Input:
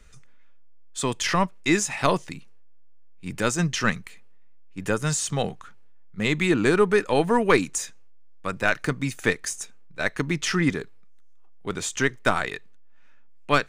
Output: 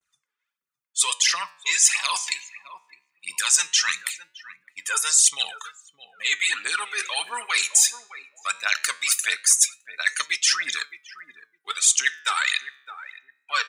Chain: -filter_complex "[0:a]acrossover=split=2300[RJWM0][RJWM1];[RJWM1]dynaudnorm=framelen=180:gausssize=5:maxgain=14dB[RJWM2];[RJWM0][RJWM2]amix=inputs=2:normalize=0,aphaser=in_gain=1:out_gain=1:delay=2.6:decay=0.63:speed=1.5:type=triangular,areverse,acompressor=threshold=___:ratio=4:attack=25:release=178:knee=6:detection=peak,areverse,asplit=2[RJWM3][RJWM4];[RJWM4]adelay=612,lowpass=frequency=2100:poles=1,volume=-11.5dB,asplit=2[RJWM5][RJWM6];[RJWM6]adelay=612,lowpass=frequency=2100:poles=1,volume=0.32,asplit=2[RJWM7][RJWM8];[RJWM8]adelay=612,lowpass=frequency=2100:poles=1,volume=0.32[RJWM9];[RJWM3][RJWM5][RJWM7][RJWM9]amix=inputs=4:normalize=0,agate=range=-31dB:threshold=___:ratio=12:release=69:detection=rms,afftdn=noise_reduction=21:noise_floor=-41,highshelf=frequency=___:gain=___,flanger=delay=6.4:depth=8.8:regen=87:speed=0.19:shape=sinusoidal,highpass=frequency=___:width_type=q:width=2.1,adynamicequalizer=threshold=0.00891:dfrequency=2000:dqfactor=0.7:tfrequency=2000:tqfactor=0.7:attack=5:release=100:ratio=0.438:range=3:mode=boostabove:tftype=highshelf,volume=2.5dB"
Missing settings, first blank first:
-28dB, -51dB, 7600, 11.5, 1100